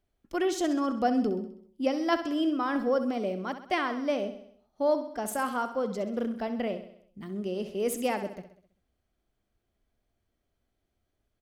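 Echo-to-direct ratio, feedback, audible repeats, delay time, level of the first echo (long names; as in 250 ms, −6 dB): −9.5 dB, 53%, 5, 65 ms, −11.0 dB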